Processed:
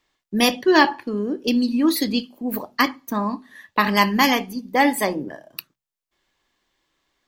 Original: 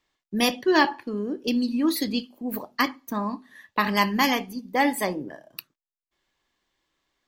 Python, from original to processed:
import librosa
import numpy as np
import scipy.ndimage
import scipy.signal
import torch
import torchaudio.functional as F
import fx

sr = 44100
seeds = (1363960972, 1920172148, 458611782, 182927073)

y = fx.hum_notches(x, sr, base_hz=60, count=3)
y = F.gain(torch.from_numpy(y), 4.5).numpy()